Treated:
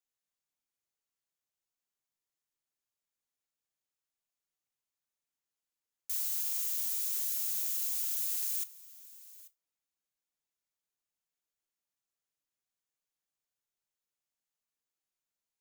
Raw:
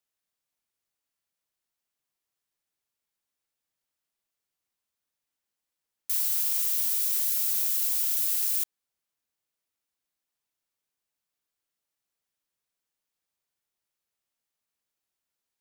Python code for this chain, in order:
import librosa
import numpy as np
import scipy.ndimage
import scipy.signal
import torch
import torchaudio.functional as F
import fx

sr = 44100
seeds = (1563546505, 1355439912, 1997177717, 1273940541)

p1 = fx.peak_eq(x, sr, hz=6700.0, db=5.0, octaves=0.25)
p2 = p1 + fx.echo_single(p1, sr, ms=838, db=-19.5, dry=0)
p3 = fx.room_shoebox(p2, sr, seeds[0], volume_m3=140.0, walls='furnished', distance_m=0.4)
y = p3 * 10.0 ** (-7.5 / 20.0)